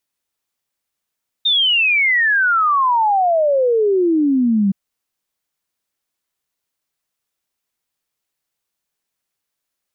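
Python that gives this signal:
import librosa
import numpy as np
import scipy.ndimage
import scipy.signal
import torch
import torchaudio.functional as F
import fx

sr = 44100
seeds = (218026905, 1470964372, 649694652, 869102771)

y = fx.ess(sr, length_s=3.27, from_hz=3700.0, to_hz=190.0, level_db=-12.0)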